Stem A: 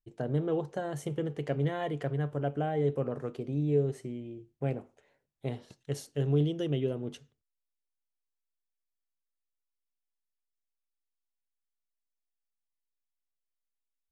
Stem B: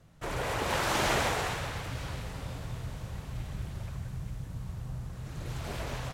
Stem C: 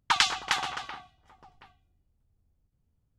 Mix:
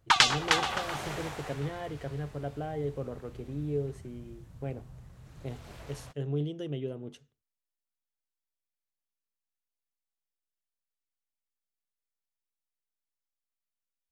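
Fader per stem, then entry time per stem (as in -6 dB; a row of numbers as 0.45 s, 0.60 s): -5.0 dB, -11.0 dB, +2.0 dB; 0.00 s, 0.00 s, 0.00 s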